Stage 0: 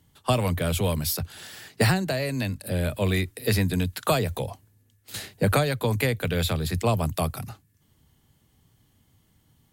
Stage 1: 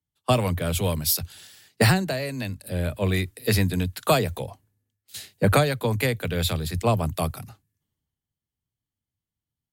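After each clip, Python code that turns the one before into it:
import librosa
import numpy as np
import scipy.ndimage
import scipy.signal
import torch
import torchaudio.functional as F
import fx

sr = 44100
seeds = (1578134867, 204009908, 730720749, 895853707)

y = fx.band_widen(x, sr, depth_pct=70)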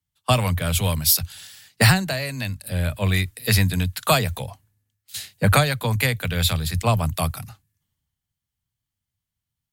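y = fx.peak_eq(x, sr, hz=370.0, db=-11.0, octaves=1.6)
y = y * librosa.db_to_amplitude(5.5)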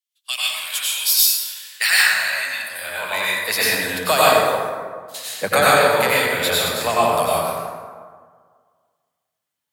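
y = fx.filter_sweep_highpass(x, sr, from_hz=2900.0, to_hz=420.0, start_s=1.24, end_s=3.98, q=1.2)
y = fx.rev_plate(y, sr, seeds[0], rt60_s=1.8, hf_ratio=0.45, predelay_ms=80, drr_db=-8.0)
y = y * librosa.db_to_amplitude(-1.5)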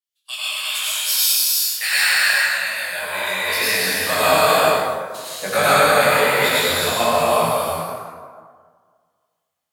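y = fx.rev_gated(x, sr, seeds[1], gate_ms=450, shape='flat', drr_db=-5.0)
y = fx.detune_double(y, sr, cents=37)
y = y * librosa.db_to_amplitude(-1.5)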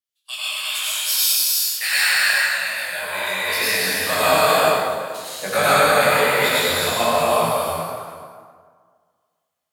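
y = x + 10.0 ** (-17.5 / 20.0) * np.pad(x, (int(425 * sr / 1000.0), 0))[:len(x)]
y = y * librosa.db_to_amplitude(-1.0)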